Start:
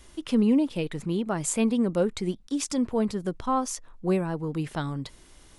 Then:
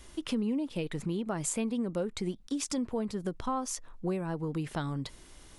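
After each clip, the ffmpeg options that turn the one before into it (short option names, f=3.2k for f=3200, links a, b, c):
-af "acompressor=threshold=-30dB:ratio=4"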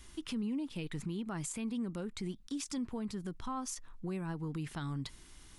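-af "equalizer=f=550:t=o:w=1:g=-10,alimiter=level_in=4.5dB:limit=-24dB:level=0:latency=1:release=24,volume=-4.5dB,volume=-2dB"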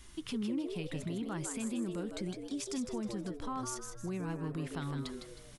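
-filter_complex "[0:a]asplit=5[a][b][c][d][e];[b]adelay=157,afreqshift=110,volume=-6.5dB[f];[c]adelay=314,afreqshift=220,volume=-14.9dB[g];[d]adelay=471,afreqshift=330,volume=-23.3dB[h];[e]adelay=628,afreqshift=440,volume=-31.7dB[i];[a][f][g][h][i]amix=inputs=5:normalize=0"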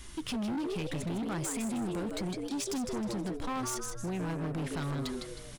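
-af "asoftclip=type=hard:threshold=-38.5dB,volume=7dB"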